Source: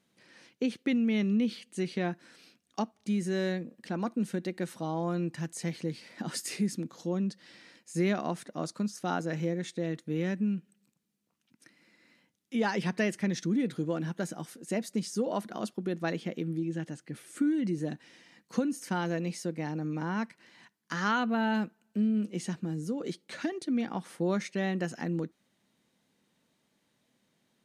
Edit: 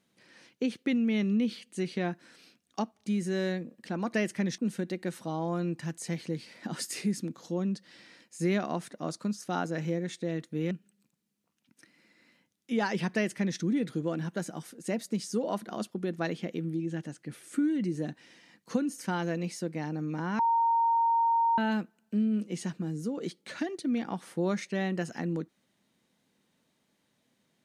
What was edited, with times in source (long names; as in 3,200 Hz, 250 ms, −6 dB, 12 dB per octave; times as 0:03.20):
0:10.26–0:10.54: remove
0:12.97–0:13.42: duplicate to 0:04.13
0:20.22–0:21.41: beep over 923 Hz −22 dBFS